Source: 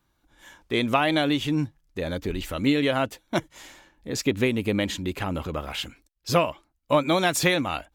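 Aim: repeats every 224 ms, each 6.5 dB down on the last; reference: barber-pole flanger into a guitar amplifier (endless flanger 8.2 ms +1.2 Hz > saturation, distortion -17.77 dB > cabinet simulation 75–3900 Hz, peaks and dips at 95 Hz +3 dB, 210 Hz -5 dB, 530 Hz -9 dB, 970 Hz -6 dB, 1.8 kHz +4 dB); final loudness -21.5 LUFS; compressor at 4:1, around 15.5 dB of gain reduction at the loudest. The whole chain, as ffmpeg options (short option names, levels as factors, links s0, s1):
-filter_complex "[0:a]acompressor=threshold=0.0158:ratio=4,aecho=1:1:224|448|672|896|1120|1344:0.473|0.222|0.105|0.0491|0.0231|0.0109,asplit=2[s0][s1];[s1]adelay=8.2,afreqshift=1.2[s2];[s0][s2]amix=inputs=2:normalize=1,asoftclip=threshold=0.0266,highpass=75,equalizer=f=95:t=q:w=4:g=3,equalizer=f=210:t=q:w=4:g=-5,equalizer=f=530:t=q:w=4:g=-9,equalizer=f=970:t=q:w=4:g=-6,equalizer=f=1800:t=q:w=4:g=4,lowpass=f=3900:w=0.5412,lowpass=f=3900:w=1.3066,volume=12.6"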